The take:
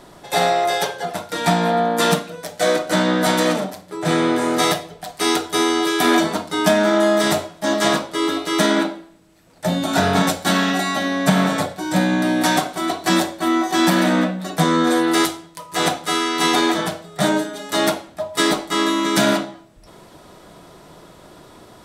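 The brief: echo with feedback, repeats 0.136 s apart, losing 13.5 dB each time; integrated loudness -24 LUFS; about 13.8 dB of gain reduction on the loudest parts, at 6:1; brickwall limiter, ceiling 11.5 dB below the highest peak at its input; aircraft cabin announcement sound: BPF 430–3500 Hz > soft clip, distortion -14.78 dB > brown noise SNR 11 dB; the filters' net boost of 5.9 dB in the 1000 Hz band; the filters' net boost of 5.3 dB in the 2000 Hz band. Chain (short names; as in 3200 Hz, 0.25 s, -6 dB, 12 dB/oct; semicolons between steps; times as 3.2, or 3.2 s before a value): bell 1000 Hz +7 dB; bell 2000 Hz +4.5 dB; compressor 6:1, threshold -24 dBFS; limiter -20 dBFS; BPF 430–3500 Hz; feedback echo 0.136 s, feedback 21%, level -13.5 dB; soft clip -27 dBFS; brown noise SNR 11 dB; gain +9.5 dB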